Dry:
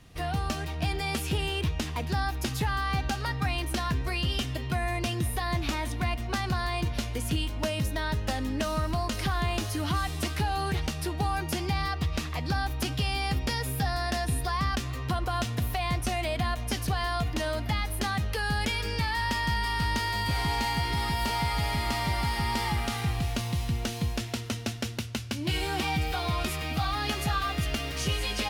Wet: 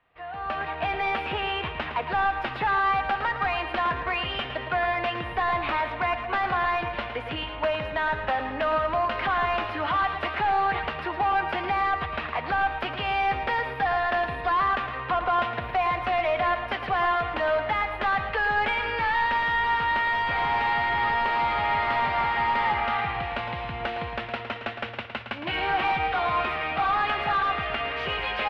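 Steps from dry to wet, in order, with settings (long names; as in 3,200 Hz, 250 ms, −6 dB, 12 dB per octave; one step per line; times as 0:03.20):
three-way crossover with the lows and the highs turned down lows −23 dB, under 550 Hz, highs −18 dB, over 3,300 Hz
automatic gain control gain up to 16.5 dB
hard clipping −15.5 dBFS, distortion −12 dB
high-frequency loss of the air 420 metres
on a send: repeating echo 111 ms, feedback 43%, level −9.5 dB
on the sum: level −3 dB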